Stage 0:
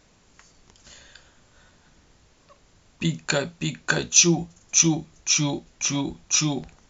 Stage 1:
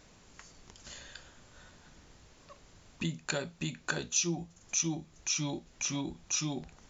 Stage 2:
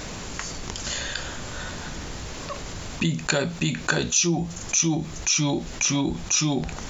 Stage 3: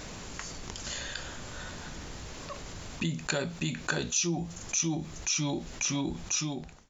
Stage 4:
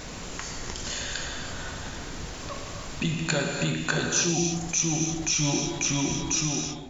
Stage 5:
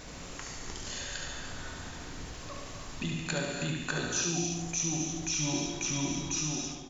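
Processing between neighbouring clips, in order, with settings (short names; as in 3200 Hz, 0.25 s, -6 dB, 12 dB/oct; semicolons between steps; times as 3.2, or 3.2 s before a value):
compressor 2:1, threshold -39 dBFS, peak gain reduction 15.5 dB
fast leveller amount 50%; gain +7.5 dB
ending faded out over 0.58 s; gain -7.5 dB
non-linear reverb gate 0.35 s flat, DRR 1 dB; gain +3 dB
feedback echo 72 ms, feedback 44%, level -5.5 dB; gain -7.5 dB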